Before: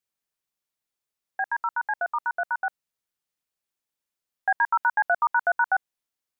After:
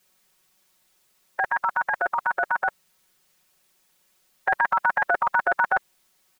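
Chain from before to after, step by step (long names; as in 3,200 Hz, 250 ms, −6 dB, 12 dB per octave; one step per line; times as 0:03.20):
comb filter 5.4 ms, depth 97%
every bin compressed towards the loudest bin 2 to 1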